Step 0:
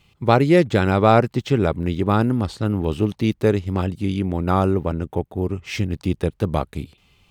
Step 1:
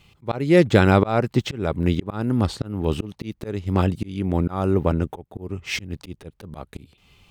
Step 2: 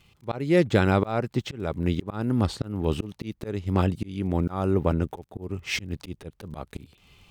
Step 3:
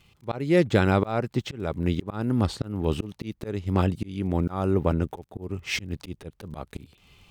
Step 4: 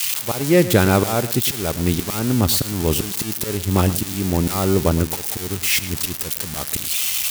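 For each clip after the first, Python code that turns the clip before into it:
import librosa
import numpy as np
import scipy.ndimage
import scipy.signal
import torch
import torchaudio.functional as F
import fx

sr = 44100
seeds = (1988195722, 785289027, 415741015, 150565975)

y1 = fx.auto_swell(x, sr, attack_ms=350.0)
y1 = y1 * 10.0 ** (3.0 / 20.0)
y2 = fx.rider(y1, sr, range_db=5, speed_s=2.0)
y2 = fx.dmg_crackle(y2, sr, seeds[0], per_s=29.0, level_db=-40.0)
y2 = y2 * 10.0 ** (-5.5 / 20.0)
y3 = y2
y4 = y3 + 0.5 * 10.0 ** (-17.0 / 20.0) * np.diff(np.sign(y3), prepend=np.sign(y3[:1]))
y4 = y4 + 10.0 ** (-15.0 / 20.0) * np.pad(y4, (int(110 * sr / 1000.0), 0))[:len(y4)]
y4 = y4 * 10.0 ** (5.5 / 20.0)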